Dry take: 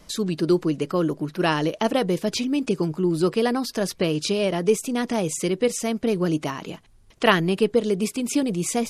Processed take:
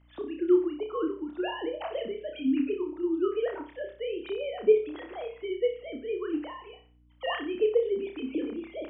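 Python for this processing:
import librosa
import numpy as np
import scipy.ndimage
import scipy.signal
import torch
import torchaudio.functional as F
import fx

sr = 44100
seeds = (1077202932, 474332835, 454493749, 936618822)

y = fx.sine_speech(x, sr)
y = fx.add_hum(y, sr, base_hz=60, snr_db=29)
y = fx.room_flutter(y, sr, wall_m=5.2, rt60_s=0.38)
y = F.gain(torch.from_numpy(y), -8.5).numpy()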